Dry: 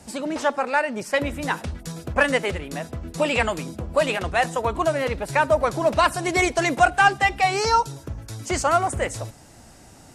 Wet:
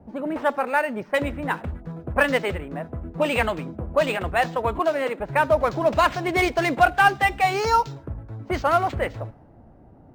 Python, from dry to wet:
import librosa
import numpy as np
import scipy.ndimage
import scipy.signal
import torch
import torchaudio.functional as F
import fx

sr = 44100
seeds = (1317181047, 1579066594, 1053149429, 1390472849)

y = fx.highpass(x, sr, hz=230.0, slope=24, at=(4.79, 5.2))
y = fx.env_lowpass(y, sr, base_hz=650.0, full_db=-15.0)
y = np.interp(np.arange(len(y)), np.arange(len(y))[::4], y[::4])